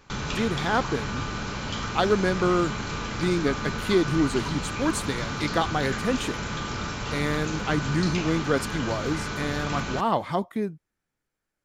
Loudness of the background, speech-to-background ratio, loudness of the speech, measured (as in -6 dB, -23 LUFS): -31.0 LUFS, 4.0 dB, -27.0 LUFS